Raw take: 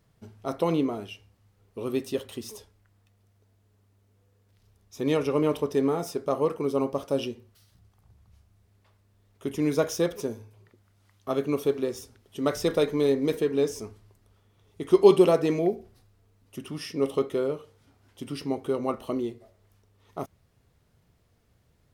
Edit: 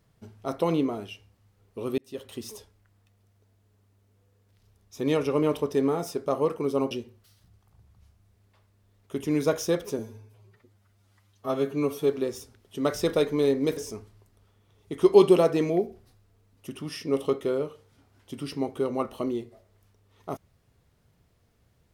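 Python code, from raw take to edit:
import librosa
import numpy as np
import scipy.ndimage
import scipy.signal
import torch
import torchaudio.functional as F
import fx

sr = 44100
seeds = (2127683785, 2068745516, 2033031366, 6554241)

y = fx.edit(x, sr, fx.fade_in_span(start_s=1.98, length_s=0.43),
    fx.cut(start_s=6.91, length_s=0.31),
    fx.stretch_span(start_s=10.3, length_s=1.4, factor=1.5),
    fx.cut(start_s=13.38, length_s=0.28), tone=tone)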